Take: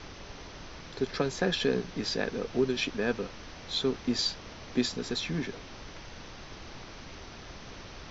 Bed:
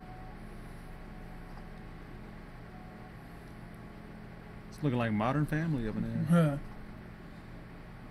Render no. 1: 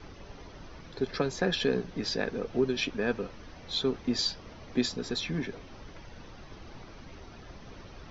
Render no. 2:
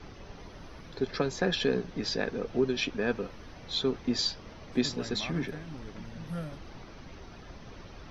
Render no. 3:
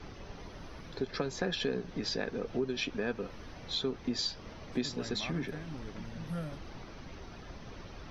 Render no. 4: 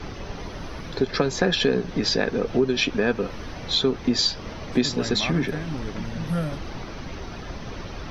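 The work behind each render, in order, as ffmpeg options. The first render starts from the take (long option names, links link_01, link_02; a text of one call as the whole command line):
ffmpeg -i in.wav -af "afftdn=noise_reduction=9:noise_floor=-46" out.wav
ffmpeg -i in.wav -i bed.wav -filter_complex "[1:a]volume=-11.5dB[link_01];[0:a][link_01]amix=inputs=2:normalize=0" out.wav
ffmpeg -i in.wav -af "acompressor=threshold=-33dB:ratio=2" out.wav
ffmpeg -i in.wav -af "volume=12dB" out.wav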